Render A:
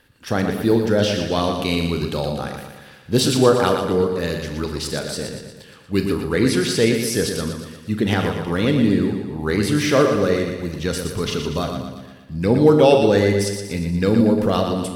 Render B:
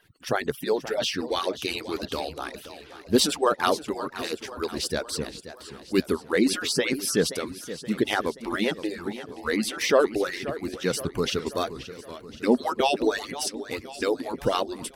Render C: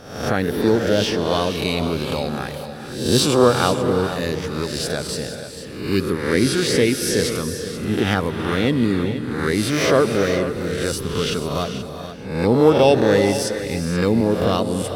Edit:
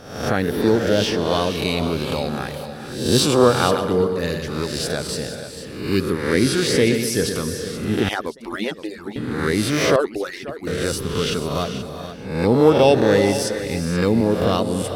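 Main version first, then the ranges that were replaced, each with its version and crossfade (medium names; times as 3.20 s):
C
3.71–4.48 s: from A
6.87–7.36 s: from A
8.09–9.16 s: from B
9.96–10.67 s: from B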